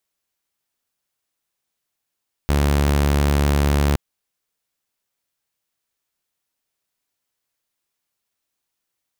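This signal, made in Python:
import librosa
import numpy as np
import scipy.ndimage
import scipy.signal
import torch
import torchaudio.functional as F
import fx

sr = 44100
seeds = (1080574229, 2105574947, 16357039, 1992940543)

y = 10.0 ** (-12.5 / 20.0) * (2.0 * np.mod(71.8 * (np.arange(round(1.47 * sr)) / sr), 1.0) - 1.0)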